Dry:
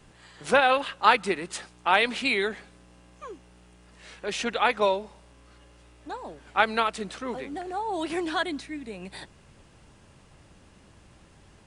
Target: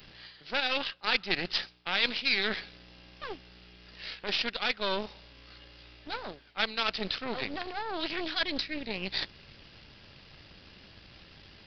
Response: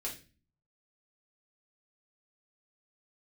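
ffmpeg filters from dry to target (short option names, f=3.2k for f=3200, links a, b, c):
-af "equalizer=f=1k:t=o:w=0.74:g=-5,areverse,acompressor=threshold=-37dB:ratio=5,areverse,aeval=exprs='0.0668*(cos(1*acos(clip(val(0)/0.0668,-1,1)))-cos(1*PI/2))+0.0106*(cos(6*acos(clip(val(0)/0.0668,-1,1)))-cos(6*PI/2))+0.00376*(cos(7*acos(clip(val(0)/0.0668,-1,1)))-cos(7*PI/2))':c=same,aresample=11025,aresample=44100,crystalizer=i=7:c=0,volume=3dB"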